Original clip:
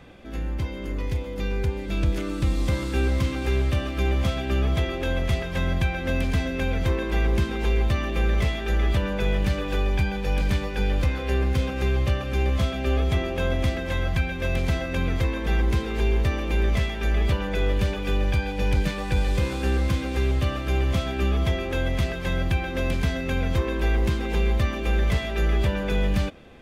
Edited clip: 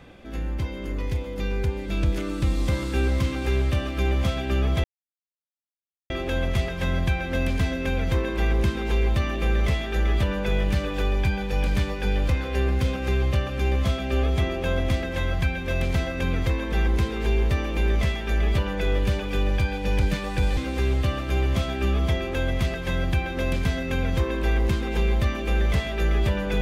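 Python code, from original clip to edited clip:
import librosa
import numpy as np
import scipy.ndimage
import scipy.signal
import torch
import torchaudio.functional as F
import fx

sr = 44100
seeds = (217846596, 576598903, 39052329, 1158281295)

y = fx.edit(x, sr, fx.insert_silence(at_s=4.84, length_s=1.26),
    fx.cut(start_s=19.31, length_s=0.64), tone=tone)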